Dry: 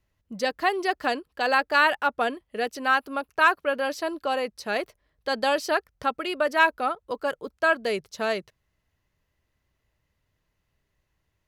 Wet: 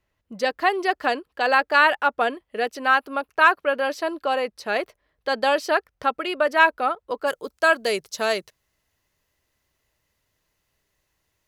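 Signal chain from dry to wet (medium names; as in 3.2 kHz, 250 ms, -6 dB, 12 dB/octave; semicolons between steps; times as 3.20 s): tone controls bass -7 dB, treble -5 dB, from 7.26 s treble +7 dB; trim +3.5 dB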